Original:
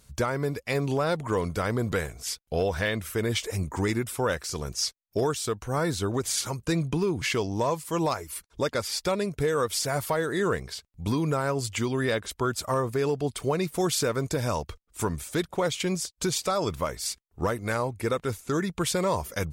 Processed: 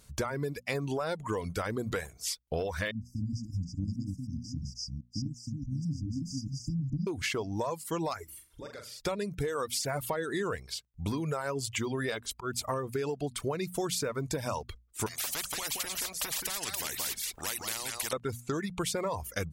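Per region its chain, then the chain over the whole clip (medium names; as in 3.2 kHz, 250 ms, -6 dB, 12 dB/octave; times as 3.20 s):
2.91–7.07 s: chunks repeated in reverse 210 ms, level -2 dB + brick-wall FIR band-stop 300–4700 Hz + distance through air 210 m
8.24–9.00 s: compression 4:1, threshold -44 dBFS + dynamic bell 7 kHz, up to -3 dB, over -53 dBFS, Q 0.71 + flutter echo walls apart 7.3 m, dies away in 0.66 s
12.10–12.70 s: band-stop 540 Hz, Q 7.3 + slow attack 139 ms
15.06–18.13 s: delay 177 ms -11.5 dB + spectrum-flattening compressor 10:1
whole clip: reverb removal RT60 0.9 s; hum notches 60/120/180/240 Hz; compression, threshold -29 dBFS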